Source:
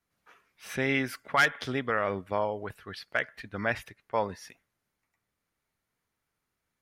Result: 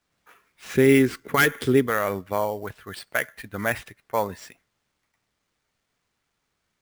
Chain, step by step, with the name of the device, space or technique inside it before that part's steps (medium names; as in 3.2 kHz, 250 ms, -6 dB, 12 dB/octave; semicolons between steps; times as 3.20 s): early companding sampler (sample-rate reducer 13 kHz, jitter 0%; companded quantiser 8-bit); 0.74–1.87 s: resonant low shelf 510 Hz +6.5 dB, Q 3; trim +4 dB